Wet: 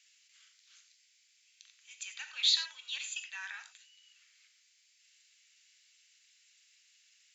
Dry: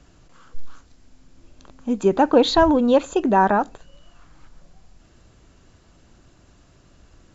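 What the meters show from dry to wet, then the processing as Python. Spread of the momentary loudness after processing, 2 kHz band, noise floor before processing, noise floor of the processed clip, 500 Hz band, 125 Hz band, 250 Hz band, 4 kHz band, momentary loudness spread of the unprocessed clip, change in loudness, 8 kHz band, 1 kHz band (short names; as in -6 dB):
18 LU, -11.5 dB, -55 dBFS, -69 dBFS, under -40 dB, under -40 dB, under -40 dB, -1.0 dB, 11 LU, -15.0 dB, n/a, -37.5 dB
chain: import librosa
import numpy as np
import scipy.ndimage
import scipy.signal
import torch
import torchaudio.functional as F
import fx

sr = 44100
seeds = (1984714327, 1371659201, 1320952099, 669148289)

y = scipy.signal.sosfilt(scipy.signal.cheby1(4, 1.0, 2100.0, 'highpass', fs=sr, output='sos'), x)
y = fx.rev_gated(y, sr, seeds[0], gate_ms=120, shape='flat', drr_db=6.5)
y = F.gain(torch.from_numpy(y), -1.5).numpy()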